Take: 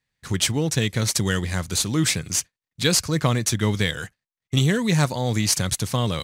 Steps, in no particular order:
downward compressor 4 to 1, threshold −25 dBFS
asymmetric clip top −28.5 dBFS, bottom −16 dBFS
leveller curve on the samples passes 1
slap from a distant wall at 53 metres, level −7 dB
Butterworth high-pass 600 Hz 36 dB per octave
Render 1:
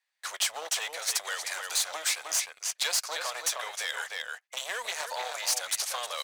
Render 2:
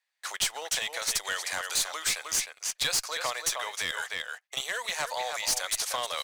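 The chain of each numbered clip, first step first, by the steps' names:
slap from a distant wall, then downward compressor, then asymmetric clip, then Butterworth high-pass, then leveller curve on the samples
slap from a distant wall, then downward compressor, then Butterworth high-pass, then asymmetric clip, then leveller curve on the samples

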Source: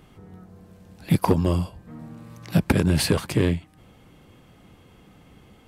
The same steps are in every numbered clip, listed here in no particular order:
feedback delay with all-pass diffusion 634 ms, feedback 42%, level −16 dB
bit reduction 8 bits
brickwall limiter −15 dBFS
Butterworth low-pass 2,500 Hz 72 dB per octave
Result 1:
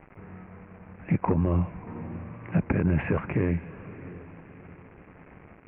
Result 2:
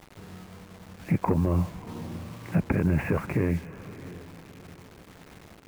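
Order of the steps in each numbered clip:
bit reduction, then Butterworth low-pass, then brickwall limiter, then feedback delay with all-pass diffusion
Butterworth low-pass, then bit reduction, then brickwall limiter, then feedback delay with all-pass diffusion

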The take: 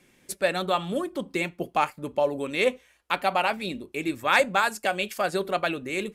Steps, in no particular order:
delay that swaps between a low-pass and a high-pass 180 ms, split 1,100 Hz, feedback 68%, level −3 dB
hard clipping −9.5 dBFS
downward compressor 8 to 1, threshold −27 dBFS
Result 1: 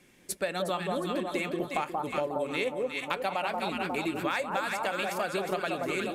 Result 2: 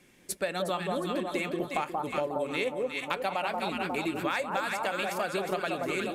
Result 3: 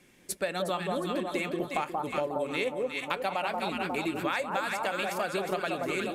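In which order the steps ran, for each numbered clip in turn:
hard clipping, then delay that swaps between a low-pass and a high-pass, then downward compressor
delay that swaps between a low-pass and a high-pass, then hard clipping, then downward compressor
delay that swaps between a low-pass and a high-pass, then downward compressor, then hard clipping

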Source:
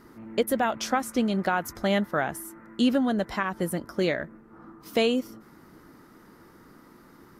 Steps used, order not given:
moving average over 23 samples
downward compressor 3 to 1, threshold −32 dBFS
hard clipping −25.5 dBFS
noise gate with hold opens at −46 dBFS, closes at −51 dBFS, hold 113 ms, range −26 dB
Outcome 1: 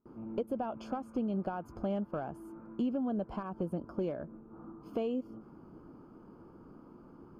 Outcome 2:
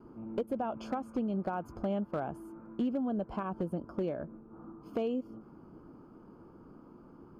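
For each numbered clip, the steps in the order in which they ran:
downward compressor, then hard clipping, then moving average, then noise gate with hold
noise gate with hold, then moving average, then downward compressor, then hard clipping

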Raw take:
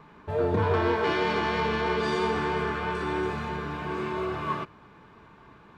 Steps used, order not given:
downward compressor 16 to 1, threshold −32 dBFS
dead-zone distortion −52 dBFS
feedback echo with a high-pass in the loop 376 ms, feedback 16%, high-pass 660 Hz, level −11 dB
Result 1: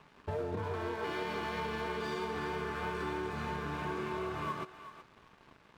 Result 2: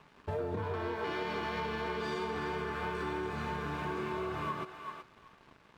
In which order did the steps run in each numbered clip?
downward compressor, then dead-zone distortion, then feedback echo with a high-pass in the loop
dead-zone distortion, then feedback echo with a high-pass in the loop, then downward compressor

